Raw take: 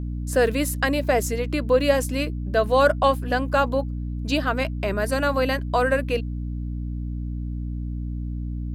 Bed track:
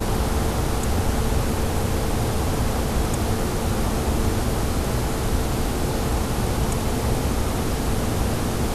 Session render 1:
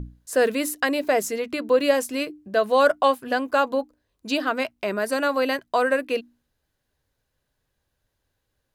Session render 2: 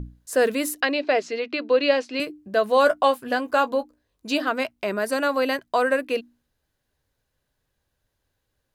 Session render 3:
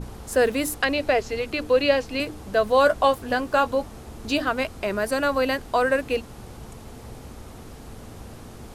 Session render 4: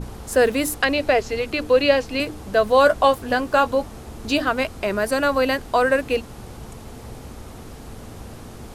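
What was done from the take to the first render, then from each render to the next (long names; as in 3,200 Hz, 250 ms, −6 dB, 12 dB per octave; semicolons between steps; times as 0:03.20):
mains-hum notches 60/120/180/240/300 Hz
0:00.81–0:02.20: loudspeaker in its box 200–4,900 Hz, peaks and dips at 200 Hz −7 dB, 1,000 Hz −3 dB, 2,600 Hz +5 dB, 4,300 Hz +5 dB; 0:02.75–0:04.48: double-tracking delay 17 ms −10.5 dB
mix in bed track −18 dB
level +3 dB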